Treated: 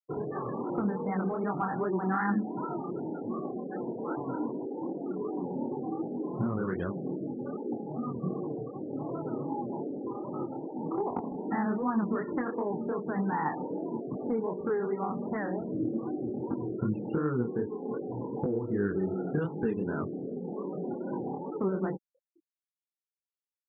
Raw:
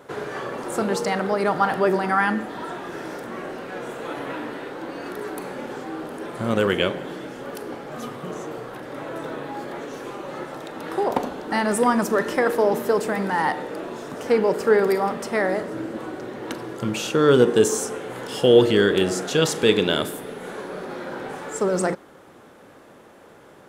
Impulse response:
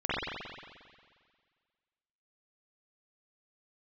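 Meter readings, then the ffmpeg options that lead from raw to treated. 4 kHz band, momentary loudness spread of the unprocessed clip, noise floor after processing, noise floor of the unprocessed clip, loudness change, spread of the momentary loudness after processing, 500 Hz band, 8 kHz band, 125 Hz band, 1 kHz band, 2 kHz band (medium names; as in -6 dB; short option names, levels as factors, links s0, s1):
under -40 dB, 15 LU, under -85 dBFS, -48 dBFS, -10.0 dB, 6 LU, -12.0 dB, under -40 dB, -4.0 dB, -10.0 dB, -15.0 dB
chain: -af "lowpass=1100,afftfilt=real='re*gte(hypot(re,im),0.0447)':imag='im*gte(hypot(re,im),0.0447)':win_size=1024:overlap=0.75,acompressor=threshold=0.0398:ratio=6,flanger=delay=19.5:depth=7.6:speed=2.6,equalizer=f=570:t=o:w=0.87:g=-12.5,volume=2.37"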